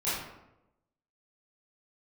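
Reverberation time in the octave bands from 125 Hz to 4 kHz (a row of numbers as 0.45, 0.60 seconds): 1.0, 1.0, 1.0, 0.85, 0.70, 0.50 seconds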